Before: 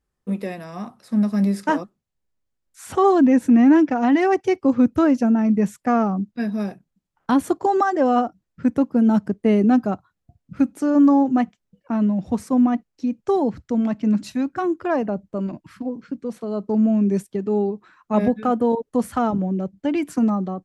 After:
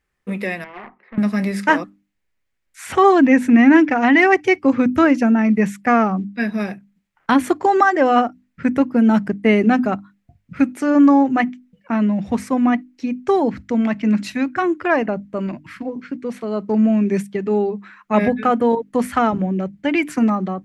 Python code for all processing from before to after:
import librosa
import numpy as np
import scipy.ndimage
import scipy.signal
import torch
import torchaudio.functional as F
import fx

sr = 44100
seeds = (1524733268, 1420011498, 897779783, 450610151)

y = fx.chain(x, sr, fx.cabinet(low_hz=360.0, low_slope=12, high_hz=2200.0, hz=(380.0, 620.0, 930.0, 1400.0, 2000.0), db=(9, -5, 3, -9, 5)),
    fx.tube_stage(drive_db=34.0, bias=0.75), at=(0.64, 1.18))
y = fx.peak_eq(y, sr, hz=2100.0, db=12.5, octaves=1.1)
y = fx.hum_notches(y, sr, base_hz=50, count=6)
y = F.gain(torch.from_numpy(y), 2.5).numpy()